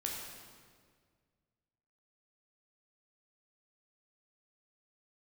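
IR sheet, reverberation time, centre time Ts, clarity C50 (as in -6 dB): 1.8 s, 80 ms, 1.0 dB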